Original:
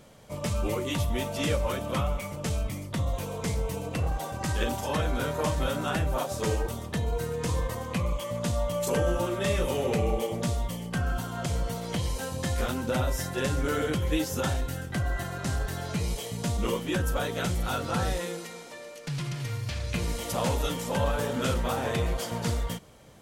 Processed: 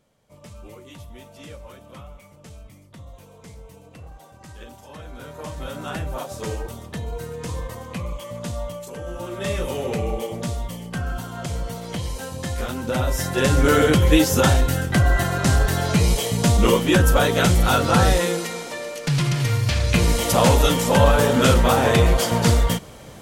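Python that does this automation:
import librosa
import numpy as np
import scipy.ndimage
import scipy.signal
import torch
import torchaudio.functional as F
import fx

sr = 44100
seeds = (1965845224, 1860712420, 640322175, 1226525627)

y = fx.gain(x, sr, db=fx.line((4.88, -13.0), (5.92, -1.0), (8.68, -1.0), (8.91, -10.0), (9.47, 1.5), (12.69, 1.5), (13.68, 12.0)))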